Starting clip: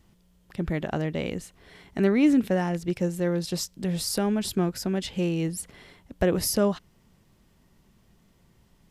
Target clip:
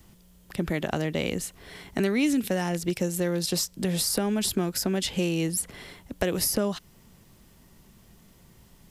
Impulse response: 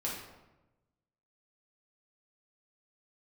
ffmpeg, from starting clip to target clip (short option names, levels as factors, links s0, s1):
-filter_complex "[0:a]crystalizer=i=1:c=0,acrossover=split=190|2500[s0][s1][s2];[s0]acompressor=threshold=0.00794:ratio=4[s3];[s1]acompressor=threshold=0.0282:ratio=4[s4];[s2]acompressor=threshold=0.0251:ratio=4[s5];[s3][s4][s5]amix=inputs=3:normalize=0,volume=1.88"